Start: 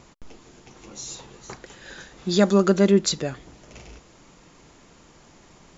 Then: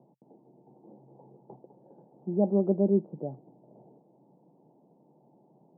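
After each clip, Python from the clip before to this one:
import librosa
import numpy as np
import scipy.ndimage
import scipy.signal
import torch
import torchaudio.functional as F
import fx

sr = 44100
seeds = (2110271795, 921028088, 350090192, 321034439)

y = scipy.signal.sosfilt(scipy.signal.cheby1(5, 1.0, [130.0, 880.0], 'bandpass', fs=sr, output='sos'), x)
y = y * 10.0 ** (-6.5 / 20.0)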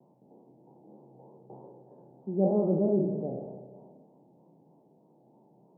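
y = fx.spec_trails(x, sr, decay_s=1.05)
y = fx.vibrato(y, sr, rate_hz=3.2, depth_cents=98.0)
y = fx.rev_spring(y, sr, rt60_s=1.7, pass_ms=(31, 53), chirp_ms=50, drr_db=7.5)
y = y * 10.0 ** (-3.0 / 20.0)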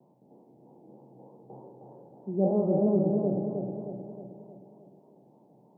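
y = fx.echo_feedback(x, sr, ms=312, feedback_pct=52, wet_db=-3.0)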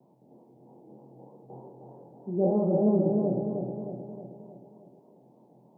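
y = fx.doubler(x, sr, ms=23.0, db=-5.5)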